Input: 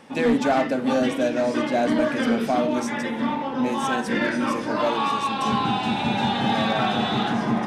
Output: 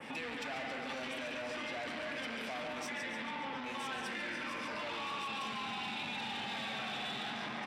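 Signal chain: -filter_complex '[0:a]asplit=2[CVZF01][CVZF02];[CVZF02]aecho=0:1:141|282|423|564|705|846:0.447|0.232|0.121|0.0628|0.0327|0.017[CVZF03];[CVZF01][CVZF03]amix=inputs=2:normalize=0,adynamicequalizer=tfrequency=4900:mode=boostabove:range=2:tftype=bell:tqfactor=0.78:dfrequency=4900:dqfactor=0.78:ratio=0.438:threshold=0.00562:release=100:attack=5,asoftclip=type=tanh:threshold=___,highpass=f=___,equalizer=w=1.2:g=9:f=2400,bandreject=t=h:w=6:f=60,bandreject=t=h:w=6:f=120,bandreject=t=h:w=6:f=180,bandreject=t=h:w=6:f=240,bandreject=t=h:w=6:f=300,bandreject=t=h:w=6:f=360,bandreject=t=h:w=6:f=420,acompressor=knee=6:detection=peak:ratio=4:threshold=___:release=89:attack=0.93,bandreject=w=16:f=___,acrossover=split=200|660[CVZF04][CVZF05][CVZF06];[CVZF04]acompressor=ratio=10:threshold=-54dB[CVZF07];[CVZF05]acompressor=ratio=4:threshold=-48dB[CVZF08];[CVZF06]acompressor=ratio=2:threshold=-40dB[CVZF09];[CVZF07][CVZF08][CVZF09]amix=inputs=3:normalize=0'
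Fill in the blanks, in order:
-22.5dB, 55, -35dB, 6500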